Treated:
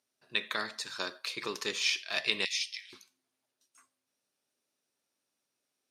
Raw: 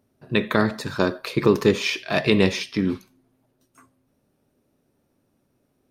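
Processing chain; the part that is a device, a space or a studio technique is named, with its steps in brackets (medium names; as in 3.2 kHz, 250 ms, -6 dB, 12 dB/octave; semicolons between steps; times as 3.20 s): piezo pickup straight into a mixer (low-pass 6.4 kHz 12 dB/octave; differentiator); 2.45–2.93 s: elliptic high-pass 2 kHz, stop band 50 dB; trim +3.5 dB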